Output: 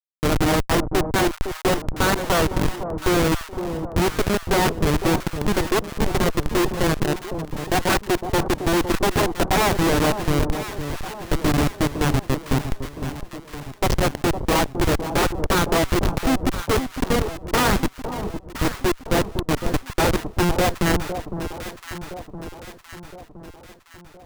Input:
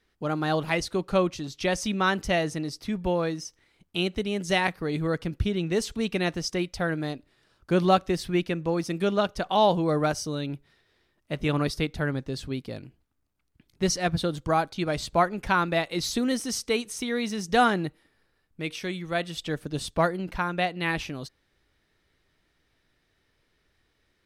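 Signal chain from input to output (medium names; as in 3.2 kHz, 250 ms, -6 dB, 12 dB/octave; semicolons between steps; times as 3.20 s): peaking EQ 8.6 kHz -11.5 dB 1.4 oct; sine folder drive 16 dB, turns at -7.5 dBFS; rippled Chebyshev high-pass 260 Hz, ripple 3 dB; Schmitt trigger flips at -11.5 dBFS; echo whose repeats swap between lows and highs 508 ms, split 1 kHz, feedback 70%, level -8 dB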